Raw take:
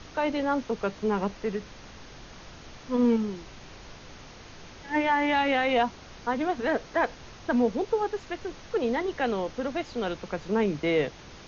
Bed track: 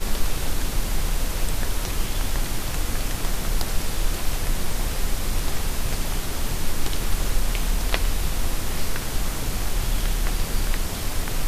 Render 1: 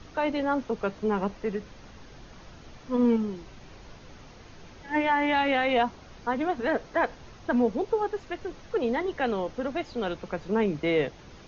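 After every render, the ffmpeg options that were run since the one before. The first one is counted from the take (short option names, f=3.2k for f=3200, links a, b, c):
-af "afftdn=nr=6:nf=-47"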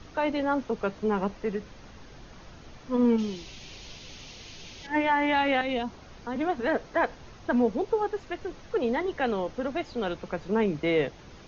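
-filter_complex "[0:a]asettb=1/sr,asplit=3[a][b][c];[a]atrim=end=3.184[d];[b]atrim=start=3.18:end=4.87,asetpts=PTS-STARTPTS,afade=t=in:d=0.004:c=qsin,afade=t=out:st=1.686:d=0.004:c=qsin,highshelf=f=2.1k:t=q:w=1.5:g=10[e];[c]atrim=start=4.866[f];[d][e]acrossfade=d=0.004:c1=hsin:c2=qsin[g];[g][f]acrossfade=d=0.004:c1=qsin:c2=hsin,asettb=1/sr,asplit=3[h][i][j];[h]atrim=end=5.614[k];[i]atrim=start=5.61:end=6.36,asetpts=PTS-STARTPTS,afade=t=in:d=0.004:c=qsin,afade=t=out:st=0.746:d=0.004:c=qsin,acrossover=split=430|3000[l][m][n];[m]acompressor=threshold=-36dB:ratio=4:attack=3.2:release=140:knee=2.83:detection=peak[o];[l][o][n]amix=inputs=3:normalize=0[p];[j]atrim=start=6.356[q];[k][p]acrossfade=d=0.004:c1=hsin:c2=qsin[r];[r][q]acrossfade=d=0.004:c1=qsin:c2=hsin"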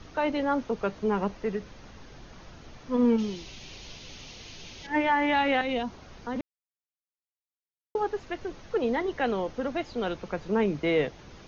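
-filter_complex "[0:a]asplit=3[a][b][c];[a]atrim=end=6.41,asetpts=PTS-STARTPTS,afade=t=out:st=6.406:d=0.004:c=hsin[d];[b]atrim=start=6.41:end=7.95,asetpts=PTS-STARTPTS,volume=0[e];[c]atrim=start=7.95,asetpts=PTS-STARTPTS,afade=t=in:d=0.004:c=hsin[f];[d][e][f]concat=n=3:v=0:a=1"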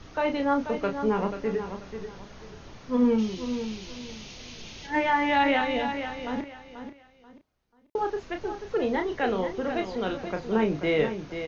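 -filter_complex "[0:a]asplit=2[a][b];[b]adelay=32,volume=-6.5dB[c];[a][c]amix=inputs=2:normalize=0,asplit=2[d][e];[e]aecho=0:1:486|972|1458:0.355|0.0993|0.0278[f];[d][f]amix=inputs=2:normalize=0"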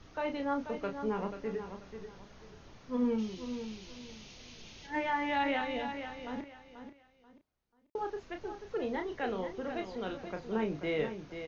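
-af "volume=-8.5dB"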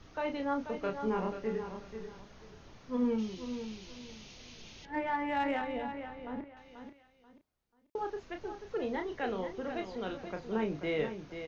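-filter_complex "[0:a]asettb=1/sr,asplit=3[a][b][c];[a]atrim=end=0.814[d];[b]atrim=start=0.81:end=2.21,asetpts=PTS-STARTPTS,afade=t=in:d=0.004:c=qsin,afade=t=out:st=1.396:d=0.004:c=qsin,asplit=2[e][f];[f]adelay=27,volume=-4.5dB[g];[e][g]amix=inputs=2:normalize=0,atrim=end_sample=61740[h];[c]atrim=start=2.206[i];[d][h]acrossfade=d=0.004:c1=hsin:c2=qsin[j];[j][i]acrossfade=d=0.004:c1=qsin:c2=hsin,asettb=1/sr,asplit=3[k][l][m];[k]atrim=end=4.854[n];[l]atrim=start=4.85:end=6.57,asetpts=PTS-STARTPTS,afade=t=in:d=0.004:c=qsin,afade=t=out:st=1.716:d=0.004:c=qsin,adynamicsmooth=sensitivity=1:basefreq=2.1k[o];[m]atrim=start=6.566[p];[n][o]acrossfade=d=0.004:c1=hsin:c2=qsin[q];[q][p]acrossfade=d=0.004:c1=qsin:c2=hsin"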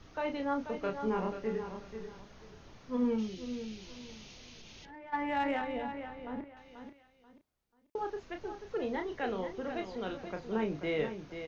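-filter_complex "[0:a]asettb=1/sr,asplit=3[a][b][c];[a]atrim=end=3.274[d];[b]atrim=start=3.27:end=3.79,asetpts=PTS-STARTPTS,afade=t=in:d=0.004:c=qsin,afade=t=out:st=0.516:d=0.004:c=qsin,equalizer=f=1k:w=3.1:g=-11[e];[c]atrim=start=3.786[f];[d][e]acrossfade=d=0.004:c1=hsin:c2=qsin[g];[g][f]acrossfade=d=0.004:c1=qsin:c2=hsin,asplit=3[h][i][j];[h]afade=t=out:st=4.34:d=0.02[k];[i]acompressor=threshold=-47dB:ratio=6:attack=3.2:release=140:knee=1:detection=peak,afade=t=in:st=4.34:d=0.02,afade=t=out:st=5.12:d=0.02[l];[j]afade=t=in:st=5.12:d=0.02[m];[k][l][m]amix=inputs=3:normalize=0"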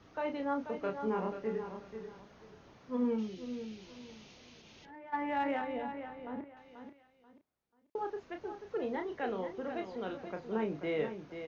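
-af "highpass=f=160:p=1,highshelf=f=2.6k:g=-8"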